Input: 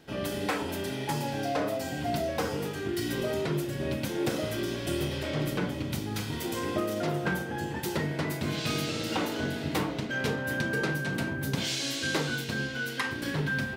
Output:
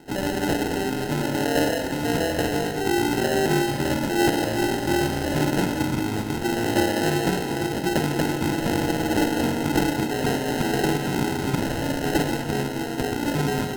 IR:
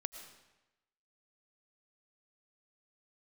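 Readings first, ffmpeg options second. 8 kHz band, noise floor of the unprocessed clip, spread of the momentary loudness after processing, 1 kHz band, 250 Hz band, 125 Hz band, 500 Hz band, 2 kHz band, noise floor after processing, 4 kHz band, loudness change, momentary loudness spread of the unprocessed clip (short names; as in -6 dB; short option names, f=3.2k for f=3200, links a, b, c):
+7.0 dB, -36 dBFS, 4 LU, +9.5 dB, +9.0 dB, +5.5 dB, +7.5 dB, +4.0 dB, -29 dBFS, +4.5 dB, +7.5 dB, 3 LU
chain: -filter_complex "[0:a]equalizer=f=320:t=o:w=0.78:g=7,acrusher=samples=38:mix=1:aa=0.000001,asplit=2[a][b];[1:a]atrim=start_sample=2205,asetrate=33075,aresample=44100[c];[b][c]afir=irnorm=-1:irlink=0,volume=7dB[d];[a][d]amix=inputs=2:normalize=0,volume=-5.5dB"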